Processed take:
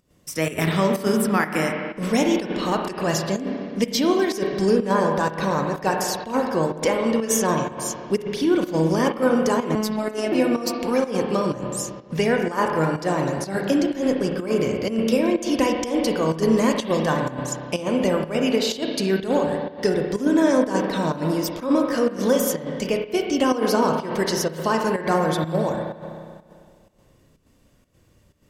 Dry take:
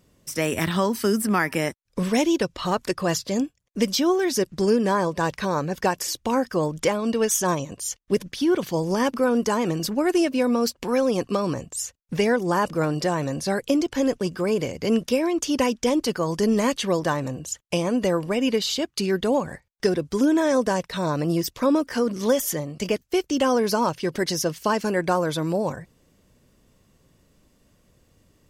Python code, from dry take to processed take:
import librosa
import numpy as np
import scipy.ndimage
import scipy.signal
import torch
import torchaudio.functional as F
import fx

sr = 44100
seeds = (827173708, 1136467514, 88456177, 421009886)

y = fx.rev_spring(x, sr, rt60_s=2.1, pass_ms=(31, 50), chirp_ms=40, drr_db=1.5)
y = fx.volume_shaper(y, sr, bpm=125, per_beat=1, depth_db=-11, release_ms=101.0, shape='slow start')
y = fx.robotise(y, sr, hz=215.0, at=(9.75, 10.32))